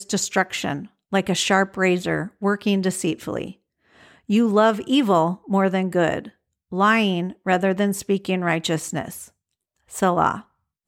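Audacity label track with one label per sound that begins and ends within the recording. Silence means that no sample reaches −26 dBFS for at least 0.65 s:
4.300000	9.130000	sound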